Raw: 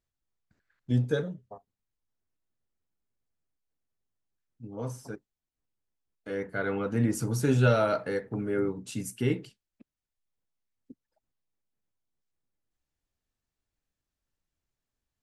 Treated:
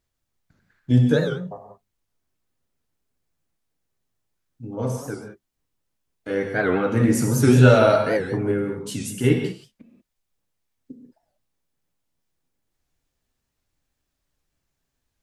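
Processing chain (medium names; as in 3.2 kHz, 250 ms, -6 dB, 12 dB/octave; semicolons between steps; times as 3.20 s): 8.51–9.24 s: compression 2:1, threshold -36 dBFS, peak gain reduction 7 dB; reverberation, pre-delay 3 ms, DRR 2.5 dB; warped record 78 rpm, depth 160 cents; trim +7.5 dB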